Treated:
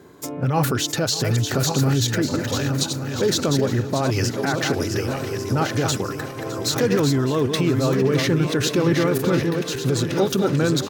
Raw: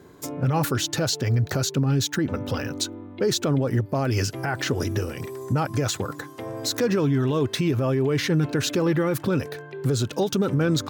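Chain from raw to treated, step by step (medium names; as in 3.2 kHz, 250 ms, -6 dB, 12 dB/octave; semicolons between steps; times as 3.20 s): backward echo that repeats 574 ms, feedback 56%, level -5.5 dB; bass shelf 71 Hz -8.5 dB; feedback delay 610 ms, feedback 49%, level -16.5 dB; trim +2.5 dB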